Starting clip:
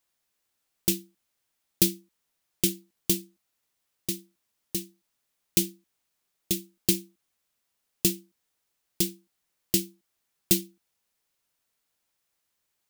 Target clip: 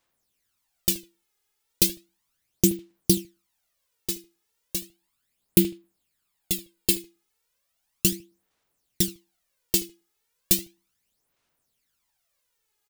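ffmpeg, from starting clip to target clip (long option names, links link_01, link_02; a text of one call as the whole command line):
ffmpeg -i in.wav -filter_complex "[0:a]asettb=1/sr,asplit=3[link_01][link_02][link_03];[link_01]atrim=end=4.794[link_04];[link_02]atrim=start=4.79:end=7,asetpts=PTS-STARTPTS,afade=type=in:duration=0.004:curve=qsin,afade=type=out:start_time=2.206:duration=0.004:curve=qsin,bandreject=frequency=5900:width=5.8[link_05];[link_03]atrim=start=6.996[link_06];[link_04][link_05]acrossfade=duration=0.004:curve1=hsin:curve2=qsin[link_07];[link_07][link_06]acrossfade=duration=0.004:curve1=qsin:curve2=hsin,asplit=2[link_08][link_09];[link_09]adelay=77,lowpass=frequency=3400:poles=1,volume=-16dB,asplit=2[link_10][link_11];[link_11]adelay=77,lowpass=frequency=3400:poles=1,volume=0.21[link_12];[link_08][link_10][link_12]amix=inputs=3:normalize=0,aphaser=in_gain=1:out_gain=1:delay=2.4:decay=0.64:speed=0.35:type=sinusoidal" out.wav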